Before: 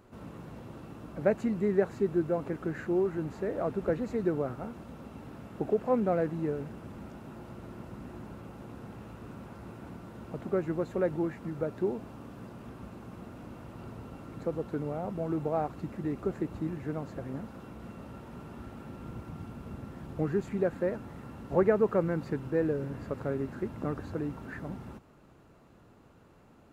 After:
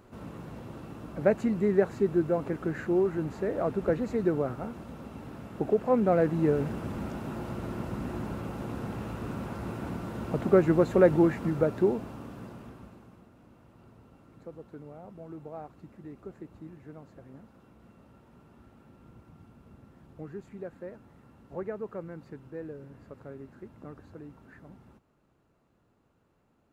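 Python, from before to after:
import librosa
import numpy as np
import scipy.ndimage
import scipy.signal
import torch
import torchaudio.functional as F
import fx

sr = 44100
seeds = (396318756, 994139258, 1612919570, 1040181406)

y = fx.gain(x, sr, db=fx.line((5.93, 2.5), (6.69, 9.0), (11.37, 9.0), (12.55, 1.0), (13.29, -11.5)))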